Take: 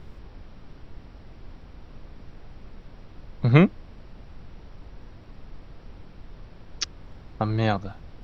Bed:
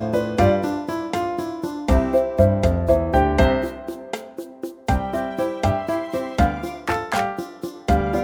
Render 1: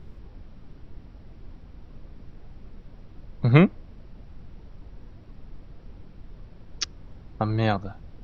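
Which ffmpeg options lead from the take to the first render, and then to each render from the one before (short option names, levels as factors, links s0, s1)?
-af "afftdn=nr=6:nf=-47"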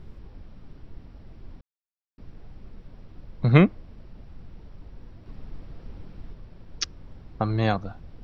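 -filter_complex "[0:a]asplit=5[s0][s1][s2][s3][s4];[s0]atrim=end=1.61,asetpts=PTS-STARTPTS,afade=t=out:st=1.606:d=0.004:c=hsin[s5];[s1]atrim=start=1.61:end=2.18,asetpts=PTS-STARTPTS,volume=0[s6];[s2]atrim=start=2.18:end=5.262,asetpts=PTS-STARTPTS,afade=t=in:d=0.004:c=hsin[s7];[s3]atrim=start=5.258:end=6.332,asetpts=PTS-STARTPTS,volume=1.5[s8];[s4]atrim=start=6.328[s9];[s5][s6][s7]concat=n=3:v=0:a=1[s10];[s10][s8]acrossfade=d=0.004:c1=hsin:c2=hsin[s11];[s11][s9]acrossfade=d=0.004:c1=hsin:c2=hsin"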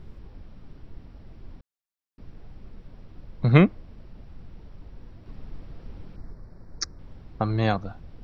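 -filter_complex "[0:a]asettb=1/sr,asplit=3[s0][s1][s2];[s0]atrim=end=6.164[s3];[s1]atrim=start=6.16:end=6.99,asetpts=PTS-STARTPTS,afade=t=in:d=0.004:c=qsin,afade=t=out:st=0.826:d=0.004:c=qsin,asuperstop=centerf=3000:order=4:qfactor=1.2[s4];[s2]atrim=start=6.986[s5];[s3][s4]acrossfade=d=0.004:c1=hsin:c2=qsin[s6];[s6][s5]acrossfade=d=0.004:c1=qsin:c2=hsin"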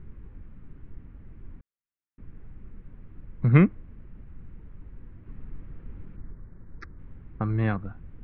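-af "lowpass=f=2200:w=0.5412,lowpass=f=2200:w=1.3066,equalizer=f=680:t=o:w=1.1:g=-11"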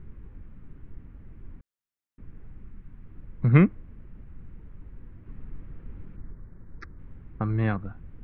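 -filter_complex "[0:a]asettb=1/sr,asplit=3[s0][s1][s2];[s0]atrim=end=2.644[s3];[s1]atrim=start=2.64:end=3.06,asetpts=PTS-STARTPTS,afade=t=in:d=0.004:c=qsin,afade=t=out:st=0.416:d=0.004:c=qsin,equalizer=f=510:t=o:w=0.77:g=-8[s4];[s2]atrim=start=3.056[s5];[s3][s4]acrossfade=d=0.004:c1=hsin:c2=qsin[s6];[s6][s5]acrossfade=d=0.004:c1=qsin:c2=hsin"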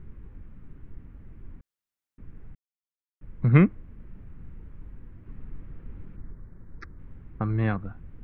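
-filter_complex "[0:a]asettb=1/sr,asplit=3[s0][s1][s2];[s0]atrim=end=3.964[s3];[s1]atrim=start=3.96:end=4.99,asetpts=PTS-STARTPTS,afade=t=in:d=0.004:c=qsin,afade=t=out:st=1.026:d=0.004:c=qsin,asplit=2[s4][s5];[s5]adelay=37,volume=0.501[s6];[s4][s6]amix=inputs=2:normalize=0,atrim=end_sample=45423[s7];[s2]atrim=start=4.986[s8];[s3][s7]acrossfade=d=0.004:c1=hsin:c2=qsin[s9];[s9][s8]acrossfade=d=0.004:c1=qsin:c2=hsin,asplit=3[s10][s11][s12];[s10]atrim=end=2.55,asetpts=PTS-STARTPTS,afade=t=out:st=2.546:d=0.004:c=hsin[s13];[s11]atrim=start=2.55:end=3.21,asetpts=PTS-STARTPTS,volume=0[s14];[s12]atrim=start=3.21,asetpts=PTS-STARTPTS,afade=t=in:d=0.004:c=hsin[s15];[s13][s14][s15]concat=n=3:v=0:a=1"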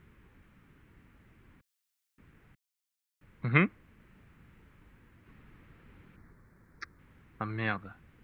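-af "highpass=f=130:p=1,tiltshelf=f=1200:g=-8.5"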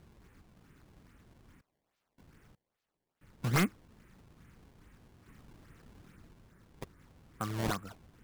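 -af "acrusher=samples=20:mix=1:aa=0.000001:lfo=1:lforange=32:lforate=2.4,asoftclip=type=hard:threshold=0.075"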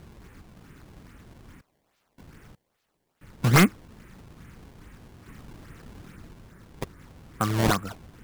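-af "volume=3.55"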